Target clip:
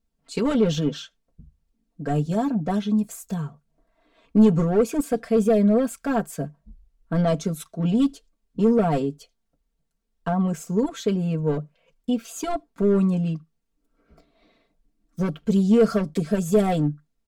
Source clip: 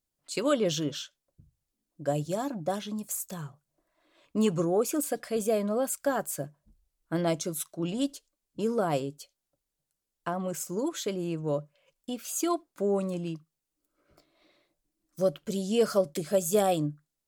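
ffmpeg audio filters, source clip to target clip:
-filter_complex "[0:a]asplit=2[s0][s1];[s1]aeval=exprs='0.0562*(abs(mod(val(0)/0.0562+3,4)-2)-1)':c=same,volume=0.596[s2];[s0][s2]amix=inputs=2:normalize=0,lowpass=f=2900:p=1,lowshelf=f=250:g=11,aecho=1:1:4.4:0.94,volume=0.794"

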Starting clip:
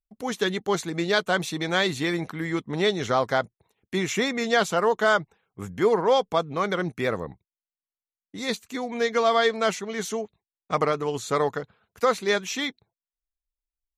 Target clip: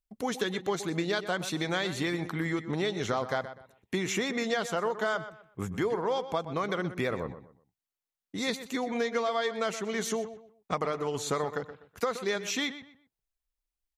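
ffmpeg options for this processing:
-filter_complex "[0:a]acompressor=threshold=0.0355:ratio=5,asplit=2[s0][s1];[s1]adelay=124,lowpass=f=3300:p=1,volume=0.251,asplit=2[s2][s3];[s3]adelay=124,lowpass=f=3300:p=1,volume=0.29,asplit=2[s4][s5];[s5]adelay=124,lowpass=f=3300:p=1,volume=0.29[s6];[s2][s4][s6]amix=inputs=3:normalize=0[s7];[s0][s7]amix=inputs=2:normalize=0,volume=1.19"

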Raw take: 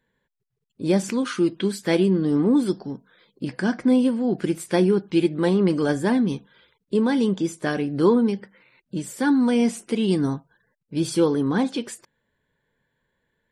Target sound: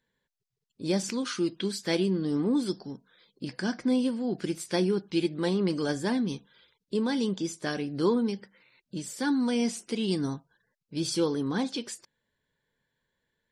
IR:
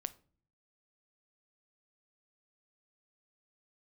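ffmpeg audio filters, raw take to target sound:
-af "equalizer=f=5100:w=0.98:g=10,volume=0.422"

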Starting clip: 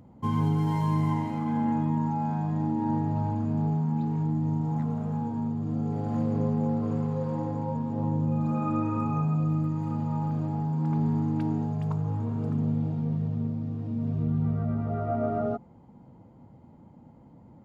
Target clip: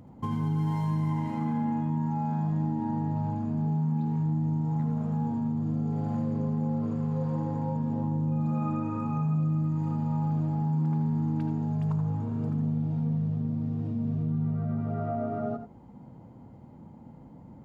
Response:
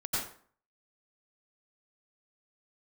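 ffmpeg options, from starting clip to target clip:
-filter_complex "[0:a]acompressor=threshold=0.0282:ratio=6,asplit=2[s0][s1];[1:a]atrim=start_sample=2205,afade=t=out:st=0.16:d=0.01,atrim=end_sample=7497,asetrate=52920,aresample=44100[s2];[s1][s2]afir=irnorm=-1:irlink=0,volume=0.473[s3];[s0][s3]amix=inputs=2:normalize=0"

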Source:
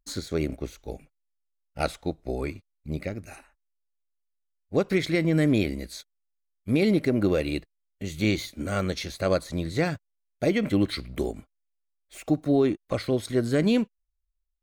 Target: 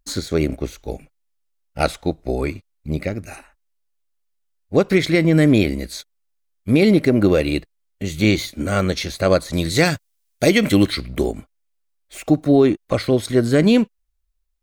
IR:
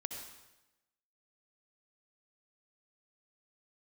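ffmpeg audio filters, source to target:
-filter_complex "[0:a]asettb=1/sr,asplit=3[s0][s1][s2];[s0]atrim=end=9.534[s3];[s1]atrim=start=9.53:end=10.89,asetpts=PTS-STARTPTS,afade=t=in:d=0.004:c=qsin,afade=t=out:st=1.356:d=0.004:c=qsin,highshelf=f=2800:g=12[s4];[s2]atrim=start=10.886[s5];[s3][s4]acrossfade=d=0.004:c1=hsin:c2=qsin[s6];[s6][s5]acrossfade=d=0.004:c1=qsin:c2=hsin,volume=2.51"

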